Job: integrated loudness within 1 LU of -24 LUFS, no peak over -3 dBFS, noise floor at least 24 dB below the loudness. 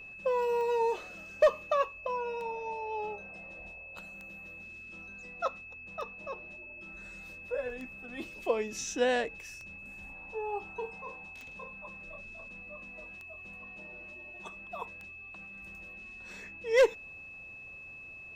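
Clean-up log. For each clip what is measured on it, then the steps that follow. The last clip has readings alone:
clicks 10; steady tone 2600 Hz; tone level -45 dBFS; loudness -35.5 LUFS; peak -14.5 dBFS; loudness target -24.0 LUFS
-> de-click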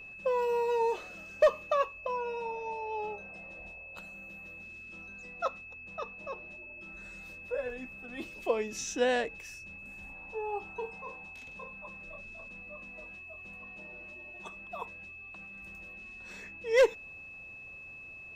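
clicks 0; steady tone 2600 Hz; tone level -45 dBFS
-> notch 2600 Hz, Q 30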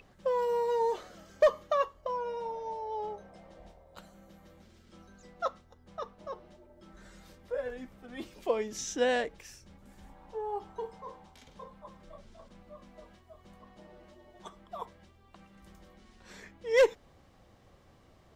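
steady tone none; loudness -32.5 LUFS; peak -15.0 dBFS; loudness target -24.0 LUFS
-> gain +8.5 dB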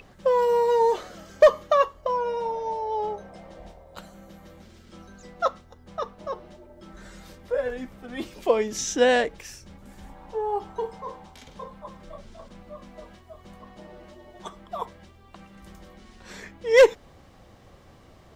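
loudness -24.0 LUFS; peak -6.5 dBFS; noise floor -52 dBFS

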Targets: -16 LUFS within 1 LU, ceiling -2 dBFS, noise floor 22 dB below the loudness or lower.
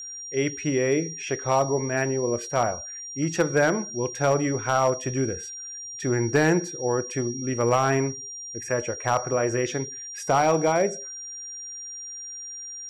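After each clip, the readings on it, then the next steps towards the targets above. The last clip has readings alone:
clipped 0.3%; flat tops at -13.0 dBFS; steady tone 5700 Hz; tone level -35 dBFS; loudness -25.5 LUFS; peak -13.0 dBFS; loudness target -16.0 LUFS
-> clip repair -13 dBFS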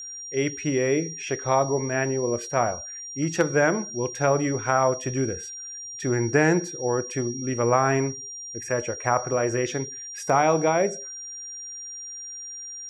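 clipped 0.0%; steady tone 5700 Hz; tone level -35 dBFS
-> notch 5700 Hz, Q 30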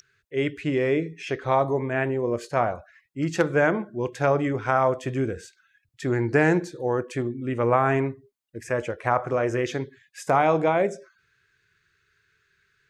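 steady tone none; loudness -25.0 LUFS; peak -7.0 dBFS; loudness target -16.0 LUFS
-> gain +9 dB; limiter -2 dBFS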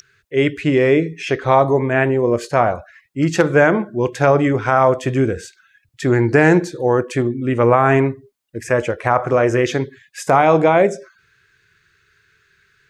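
loudness -16.5 LUFS; peak -2.0 dBFS; noise floor -61 dBFS

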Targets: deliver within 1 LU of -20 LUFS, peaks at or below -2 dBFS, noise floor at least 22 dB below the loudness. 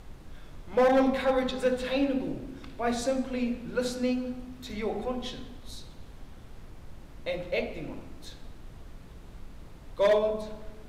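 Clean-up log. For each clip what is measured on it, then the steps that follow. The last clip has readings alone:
clipped 0.6%; flat tops at -17.5 dBFS; noise floor -48 dBFS; noise floor target -51 dBFS; loudness -29.0 LUFS; peak -17.5 dBFS; loudness target -20.0 LUFS
-> clip repair -17.5 dBFS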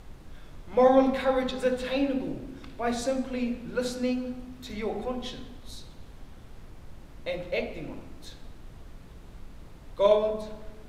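clipped 0.0%; noise floor -48 dBFS; noise floor target -50 dBFS
-> noise print and reduce 6 dB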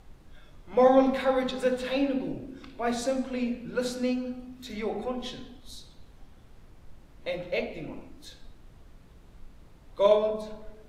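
noise floor -54 dBFS; loudness -28.0 LUFS; peak -9.0 dBFS; loudness target -20.0 LUFS
-> gain +8 dB; limiter -2 dBFS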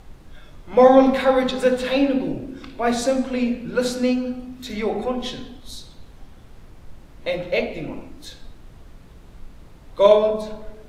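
loudness -20.0 LUFS; peak -2.0 dBFS; noise floor -46 dBFS

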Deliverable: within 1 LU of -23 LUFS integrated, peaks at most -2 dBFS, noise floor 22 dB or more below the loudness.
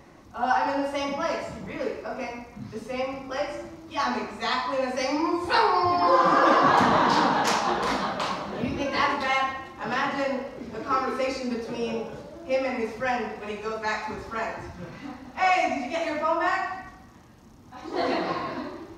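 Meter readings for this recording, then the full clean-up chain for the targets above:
loudness -26.0 LUFS; peak -8.0 dBFS; loudness target -23.0 LUFS
-> gain +3 dB

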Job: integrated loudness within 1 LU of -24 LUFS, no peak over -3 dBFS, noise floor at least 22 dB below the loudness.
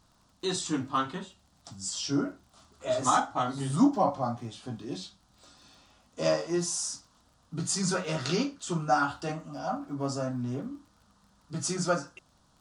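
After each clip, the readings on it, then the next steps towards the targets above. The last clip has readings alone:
ticks 43/s; loudness -30.5 LUFS; peak -11.5 dBFS; loudness target -24.0 LUFS
-> de-click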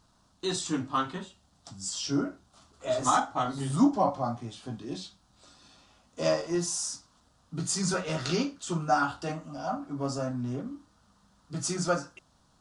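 ticks 0/s; loudness -30.5 LUFS; peak -11.5 dBFS; loudness target -24.0 LUFS
-> gain +6.5 dB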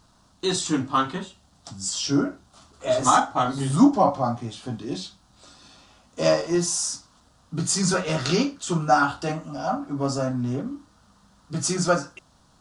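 loudness -24.0 LUFS; peak -5.0 dBFS; noise floor -59 dBFS

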